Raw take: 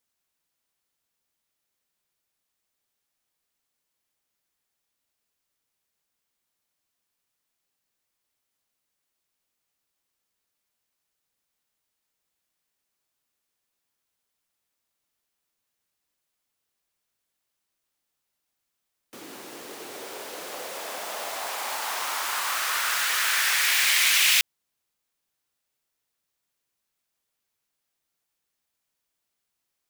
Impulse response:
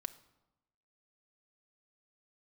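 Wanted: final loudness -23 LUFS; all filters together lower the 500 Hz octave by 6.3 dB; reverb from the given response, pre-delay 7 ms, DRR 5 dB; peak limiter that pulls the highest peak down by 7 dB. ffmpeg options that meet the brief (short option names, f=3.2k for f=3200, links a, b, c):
-filter_complex "[0:a]equalizer=f=500:t=o:g=-8.5,alimiter=limit=-14dB:level=0:latency=1,asplit=2[a][b];[1:a]atrim=start_sample=2205,adelay=7[c];[b][c]afir=irnorm=-1:irlink=0,volume=-2.5dB[d];[a][d]amix=inputs=2:normalize=0,volume=0.5dB"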